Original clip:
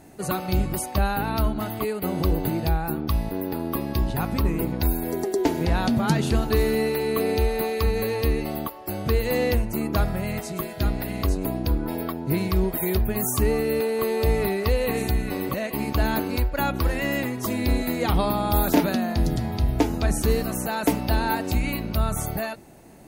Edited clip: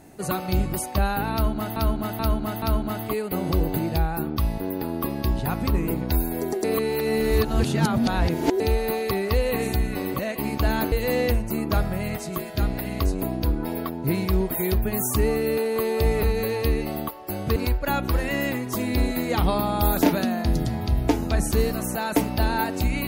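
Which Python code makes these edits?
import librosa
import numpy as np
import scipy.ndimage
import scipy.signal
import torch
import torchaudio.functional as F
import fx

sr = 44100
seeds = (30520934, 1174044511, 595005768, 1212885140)

y = fx.edit(x, sr, fx.repeat(start_s=1.33, length_s=0.43, count=4),
    fx.reverse_span(start_s=5.35, length_s=1.96),
    fx.swap(start_s=7.82, length_s=1.33, other_s=14.46, other_length_s=1.81), tone=tone)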